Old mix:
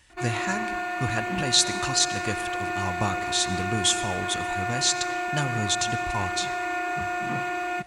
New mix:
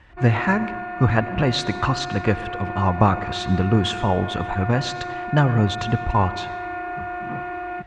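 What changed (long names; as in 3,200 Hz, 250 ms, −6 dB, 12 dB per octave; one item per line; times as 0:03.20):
speech +11.5 dB
master: add low-pass filter 1,600 Hz 12 dB per octave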